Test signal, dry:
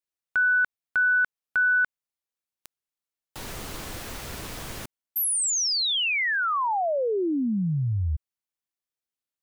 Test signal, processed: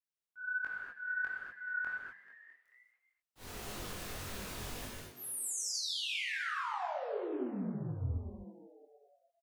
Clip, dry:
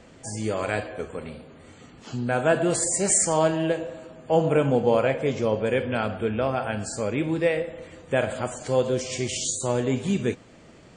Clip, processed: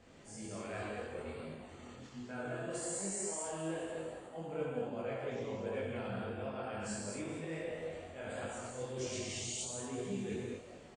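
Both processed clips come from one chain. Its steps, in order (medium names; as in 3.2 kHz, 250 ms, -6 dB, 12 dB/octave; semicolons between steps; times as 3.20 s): slow attack 103 ms; reverse; compression, threshold -31 dBFS; reverse; frequency-shifting echo 218 ms, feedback 53%, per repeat +120 Hz, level -14 dB; gated-style reverb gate 270 ms flat, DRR -3.5 dB; chorus voices 2, 1.3 Hz, delay 22 ms, depth 3 ms; trim -8 dB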